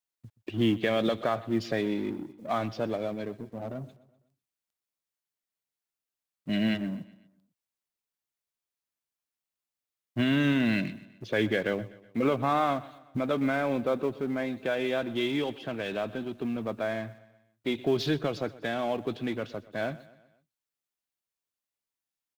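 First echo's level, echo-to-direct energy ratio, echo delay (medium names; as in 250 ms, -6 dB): -19.5 dB, -18.5 dB, 125 ms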